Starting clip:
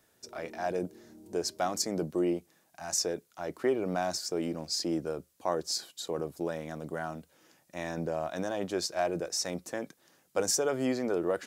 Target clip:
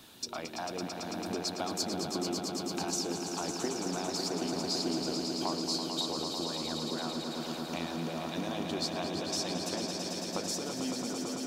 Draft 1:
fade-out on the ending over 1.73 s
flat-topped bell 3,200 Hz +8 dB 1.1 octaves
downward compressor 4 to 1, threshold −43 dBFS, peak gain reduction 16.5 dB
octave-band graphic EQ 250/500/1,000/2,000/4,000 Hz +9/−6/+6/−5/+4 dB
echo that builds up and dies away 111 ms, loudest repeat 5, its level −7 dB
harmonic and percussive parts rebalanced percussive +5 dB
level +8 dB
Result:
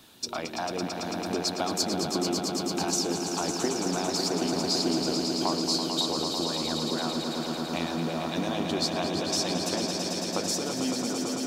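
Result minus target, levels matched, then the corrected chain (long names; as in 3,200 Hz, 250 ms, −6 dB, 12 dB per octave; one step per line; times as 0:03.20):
downward compressor: peak gain reduction −6 dB
fade-out on the ending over 1.73 s
flat-topped bell 3,200 Hz +8 dB 1.1 octaves
downward compressor 4 to 1, threshold −51 dBFS, peak gain reduction 22.5 dB
octave-band graphic EQ 250/500/1,000/2,000/4,000 Hz +9/−6/+6/−5/+4 dB
echo that builds up and dies away 111 ms, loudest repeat 5, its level −7 dB
harmonic and percussive parts rebalanced percussive +5 dB
level +8 dB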